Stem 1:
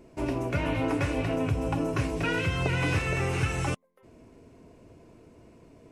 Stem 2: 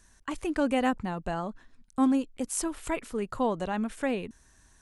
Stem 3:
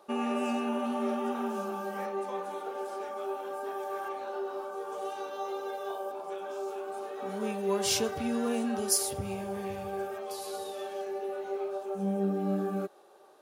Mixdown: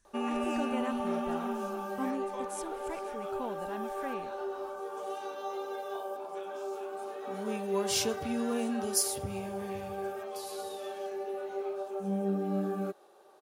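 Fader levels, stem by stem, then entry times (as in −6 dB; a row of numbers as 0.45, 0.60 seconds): muted, −11.5 dB, −1.5 dB; muted, 0.00 s, 0.05 s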